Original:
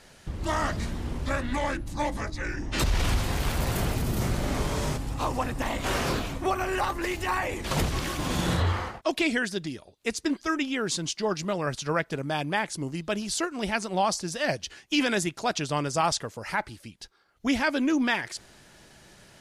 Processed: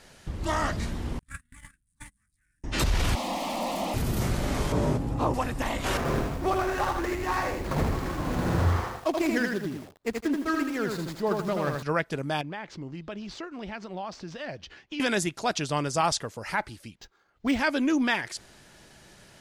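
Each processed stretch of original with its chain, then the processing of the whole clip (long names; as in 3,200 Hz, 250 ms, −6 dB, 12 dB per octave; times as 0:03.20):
0:01.19–0:02.64: spike at every zero crossing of −31 dBFS + noise gate −25 dBFS, range −41 dB + drawn EQ curve 210 Hz 0 dB, 420 Hz −25 dB, 680 Hz −27 dB, 1,100 Hz −8 dB, 1,600 Hz +2 dB, 4,200 Hz −6 dB, 6,200 Hz −3 dB, 9,300 Hz +14 dB, 14,000 Hz −14 dB
0:03.15–0:03.94: Butterworth high-pass 180 Hz 48 dB per octave + mid-hump overdrive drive 26 dB, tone 1,200 Hz, clips at −17 dBFS + phaser with its sweep stopped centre 410 Hz, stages 6
0:04.72–0:05.34: high-pass filter 160 Hz 6 dB per octave + tilt shelving filter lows +9 dB, about 1,100 Hz + double-tracking delay 17 ms −11.5 dB
0:05.97–0:11.83: running median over 15 samples + feedback echo at a low word length 81 ms, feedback 35%, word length 8 bits, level −3.5 dB
0:12.41–0:15.00: running median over 5 samples + downward compressor 2.5 to 1, threshold −36 dBFS + high-frequency loss of the air 120 metres
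0:16.95–0:17.59: high-shelf EQ 6,100 Hz −5.5 dB + linearly interpolated sample-rate reduction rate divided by 4×
whole clip: no processing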